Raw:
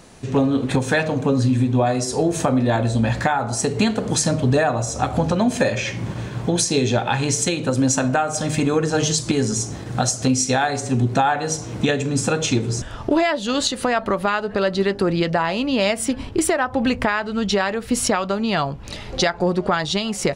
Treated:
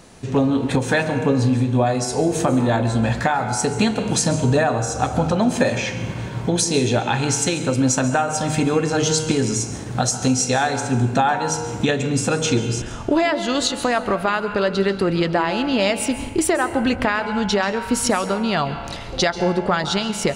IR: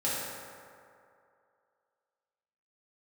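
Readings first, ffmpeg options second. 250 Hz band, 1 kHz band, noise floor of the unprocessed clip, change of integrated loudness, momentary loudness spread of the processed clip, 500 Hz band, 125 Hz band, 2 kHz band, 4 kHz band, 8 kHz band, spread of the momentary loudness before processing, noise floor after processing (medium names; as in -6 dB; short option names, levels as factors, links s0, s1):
+0.5 dB, +1.0 dB, -34 dBFS, +0.5 dB, 4 LU, +0.5 dB, 0.0 dB, +0.5 dB, +0.5 dB, 0.0 dB, 4 LU, -30 dBFS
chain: -filter_complex "[0:a]asplit=2[s0][s1];[1:a]atrim=start_sample=2205,asetrate=74970,aresample=44100,adelay=133[s2];[s1][s2]afir=irnorm=-1:irlink=0,volume=0.2[s3];[s0][s3]amix=inputs=2:normalize=0"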